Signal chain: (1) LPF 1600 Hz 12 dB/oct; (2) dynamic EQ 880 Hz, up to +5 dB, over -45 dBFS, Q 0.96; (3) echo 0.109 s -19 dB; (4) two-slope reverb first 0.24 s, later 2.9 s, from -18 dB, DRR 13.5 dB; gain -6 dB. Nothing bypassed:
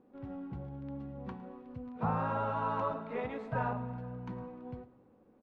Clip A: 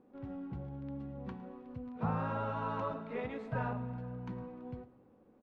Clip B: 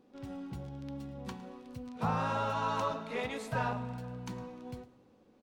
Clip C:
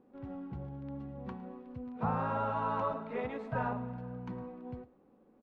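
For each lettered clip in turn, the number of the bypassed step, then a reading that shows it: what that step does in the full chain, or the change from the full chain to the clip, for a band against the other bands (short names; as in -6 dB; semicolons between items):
2, momentary loudness spread change -2 LU; 1, 2 kHz band +4.0 dB; 4, echo-to-direct -12.5 dB to -19.0 dB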